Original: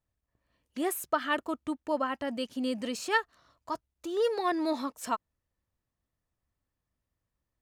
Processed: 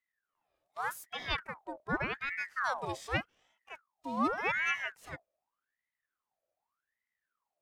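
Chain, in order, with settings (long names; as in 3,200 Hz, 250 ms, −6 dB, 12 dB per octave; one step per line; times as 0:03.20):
sub-octave generator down 2 octaves, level −2 dB
harmonic and percussive parts rebalanced percussive −16 dB
ring modulator whose carrier an LFO sweeps 1,300 Hz, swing 55%, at 0.85 Hz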